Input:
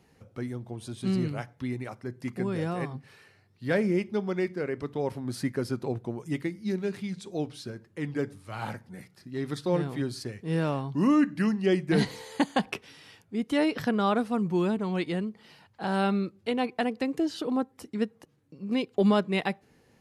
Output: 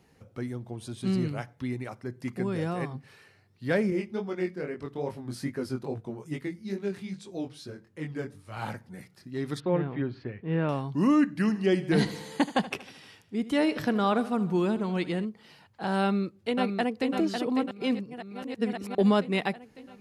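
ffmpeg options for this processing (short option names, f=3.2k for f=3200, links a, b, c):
-filter_complex "[0:a]asettb=1/sr,asplit=3[a][b][c];[a]atrim=end=3.904[d];[b]atrim=start=3.9:end=8.57,asetpts=PTS-STARTPTS,afade=t=in:d=0.004:c=qsin,afade=t=out:st=4.666:d=0.004:c=qsin,flanger=delay=19:depth=4.4:speed=2.4[e];[c]atrim=start=8.566[f];[d][e]acrossfade=d=0.004:c1=hsin:c2=qsin[g];[g][f]acrossfade=d=0.004:c1=qsin:c2=hsin,asettb=1/sr,asplit=3[h][i][j];[h]atrim=end=9.604[k];[i]atrim=start=9.6:end=10.69,asetpts=PTS-STARTPTS,afade=t=in:d=0.004:c=qsin,afade=t=out:st=1.086:d=0.004:c=qsin,lowpass=f=2.8k:w=0.5412,lowpass=f=2.8k:w=1.3066[l];[j]atrim=start=10.686[m];[k][l]acrossfade=d=0.004:c1=hsin:c2=qsin[n];[n][m]acrossfade=d=0.004:c1=qsin:c2=hsin,asplit=3[o][p][q];[o]afade=t=out:st=11.44:d=0.02[r];[p]aecho=1:1:77|154|231|308|385|462:0.158|0.0935|0.0552|0.0326|0.0192|0.0113,afade=t=in:st=11.44:d=0.02,afade=t=out:st=15.24:d=0.02[s];[q]afade=t=in:st=15.24:d=0.02[t];[r][s][t]amix=inputs=3:normalize=0,asplit=2[u][v];[v]afade=t=in:st=16.02:d=0.01,afade=t=out:st=17.11:d=0.01,aecho=0:1:550|1100|1650|2200|2750|3300|3850|4400|4950|5500:0.530884|0.345075|0.224299|0.145794|0.0947662|0.061598|0.0400387|0.0260252|0.0169164|0.0109956[w];[u][w]amix=inputs=2:normalize=0,asplit=3[x][y][z];[x]atrim=end=17.712[aa];[y]atrim=start=17.708:end=18.952,asetpts=PTS-STARTPTS,areverse[ab];[z]atrim=start=18.948[ac];[aa][ab]acrossfade=d=0.004:c1=hsin:c2=hsin[ad];[ad][ac]acrossfade=d=0.004:c1=hsin:c2=hsin"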